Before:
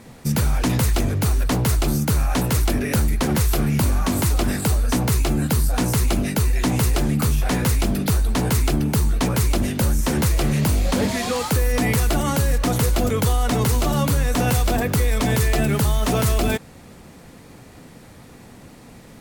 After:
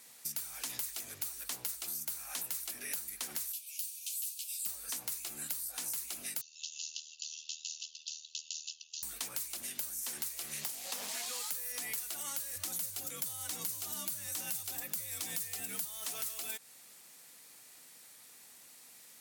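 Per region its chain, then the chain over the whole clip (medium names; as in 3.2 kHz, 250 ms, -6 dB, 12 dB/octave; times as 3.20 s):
3.52–4.66 s: steep high-pass 2.5 kHz 72 dB/octave + three-phase chorus
6.41–9.03 s: brick-wall FIR band-pass 2.6–7.2 kHz + ring modulator 39 Hz
10.63–11.26 s: high-pass 110 Hz + peaking EQ 760 Hz +7.5 dB 0.36 oct + loudspeaker Doppler distortion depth 0.64 ms
12.55–15.85 s: tone controls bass +7 dB, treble +3 dB + frequency shift +47 Hz
whole clip: differentiator; compression, threshold -35 dBFS; trim -1 dB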